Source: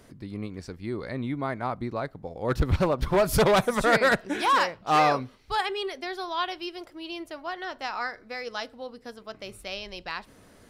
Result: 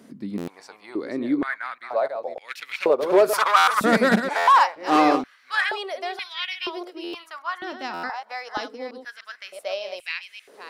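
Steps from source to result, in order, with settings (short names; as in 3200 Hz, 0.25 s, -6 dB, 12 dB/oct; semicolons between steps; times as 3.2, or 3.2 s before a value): reverse delay 0.297 s, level -8 dB; stuck buffer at 0.37/3.57/4.37/7.03/7.93, samples 512, times 8; stepped high-pass 2.1 Hz 220–2300 Hz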